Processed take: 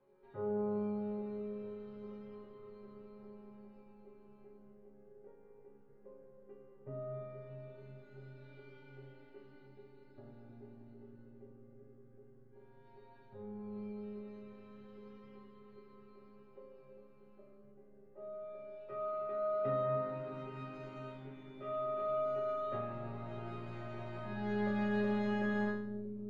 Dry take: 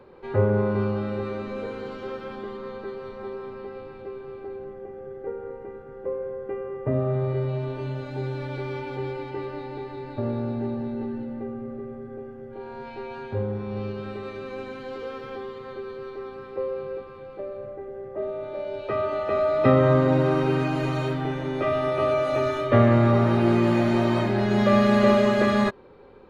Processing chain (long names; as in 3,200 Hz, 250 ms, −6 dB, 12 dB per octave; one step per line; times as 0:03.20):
high-shelf EQ 4,600 Hz −11.5 dB
resonators tuned to a chord C#3 sus4, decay 0.55 s
bucket-brigade delay 316 ms, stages 1,024, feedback 80%, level −8.5 dB
level −2.5 dB